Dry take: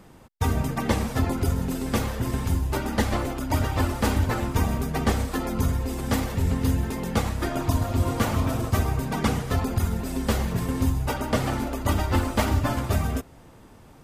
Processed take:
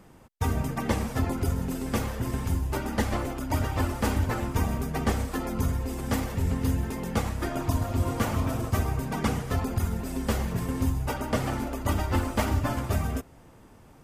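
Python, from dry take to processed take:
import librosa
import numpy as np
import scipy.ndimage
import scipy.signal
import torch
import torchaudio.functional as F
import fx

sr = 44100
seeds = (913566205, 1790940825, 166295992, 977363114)

y = fx.peak_eq(x, sr, hz=3900.0, db=-3.5, octaves=0.47)
y = y * 10.0 ** (-3.0 / 20.0)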